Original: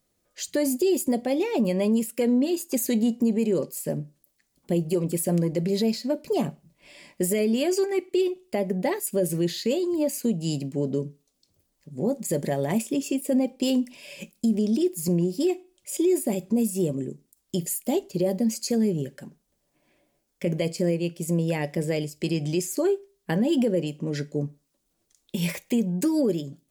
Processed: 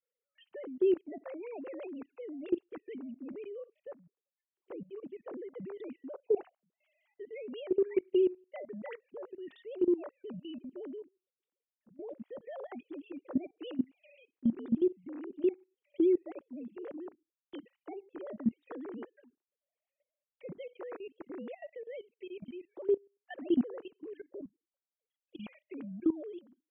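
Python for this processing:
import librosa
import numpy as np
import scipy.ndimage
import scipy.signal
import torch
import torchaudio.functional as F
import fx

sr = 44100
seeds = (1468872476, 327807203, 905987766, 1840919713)

y = fx.sine_speech(x, sr)
y = fx.level_steps(y, sr, step_db=18)
y = F.gain(torch.from_numpy(y), -6.0).numpy()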